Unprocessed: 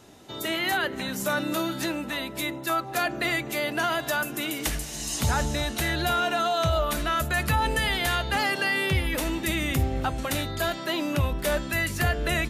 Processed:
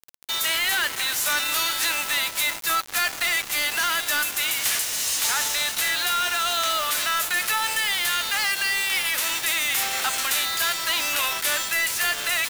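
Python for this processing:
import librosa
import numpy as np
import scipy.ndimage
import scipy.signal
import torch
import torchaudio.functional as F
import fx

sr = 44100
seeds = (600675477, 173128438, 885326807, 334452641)

y = fx.envelope_flatten(x, sr, power=0.6)
y = scipy.signal.sosfilt(scipy.signal.butter(2, 1300.0, 'highpass', fs=sr, output='sos'), y)
y = fx.rider(y, sr, range_db=10, speed_s=0.5)
y = fx.quant_dither(y, sr, seeds[0], bits=6, dither='none')
y = 10.0 ** (-26.0 / 20.0) * np.tanh(y / 10.0 ** (-26.0 / 20.0))
y = y * 10.0 ** (8.0 / 20.0)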